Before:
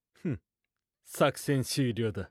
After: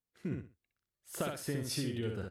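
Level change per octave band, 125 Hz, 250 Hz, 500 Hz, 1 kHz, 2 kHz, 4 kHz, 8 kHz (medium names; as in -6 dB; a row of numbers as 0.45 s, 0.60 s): -6.5 dB, -6.5 dB, -9.0 dB, -11.0 dB, -8.0 dB, -5.0 dB, -3.0 dB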